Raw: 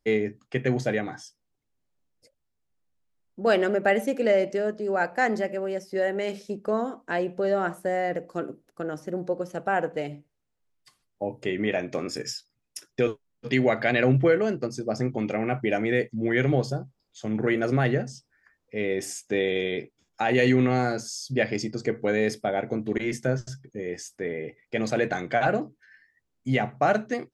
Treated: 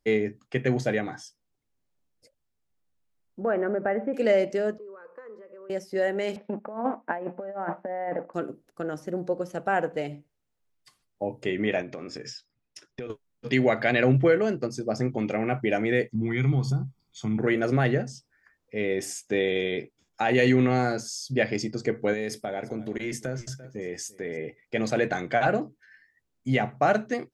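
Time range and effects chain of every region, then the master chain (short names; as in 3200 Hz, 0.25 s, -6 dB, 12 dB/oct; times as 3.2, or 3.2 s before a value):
3.42–4.14 LPF 1700 Hz 24 dB/oct + compressor 2:1, threshold -24 dBFS
4.78–5.7 compressor 10:1, threshold -30 dBFS + double band-pass 730 Hz, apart 1.2 oct
6.36–8.34 G.711 law mismatch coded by A + negative-ratio compressor -31 dBFS, ratio -0.5 + speaker cabinet 200–2100 Hz, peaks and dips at 230 Hz +6 dB, 400 Hz -4 dB, 600 Hz +5 dB, 860 Hz +9 dB
11.82–13.1 air absorption 110 m + compressor 5:1, threshold -33 dBFS
16.15–17.38 bell 140 Hz +6.5 dB 1.1 oct + compressor 2:1, threshold -29 dBFS + comb 0.9 ms, depth 81%
22.13–24.37 high shelf 6500 Hz +7.5 dB + echo 0.342 s -22.5 dB + compressor 2.5:1, threshold -29 dBFS
whole clip: dry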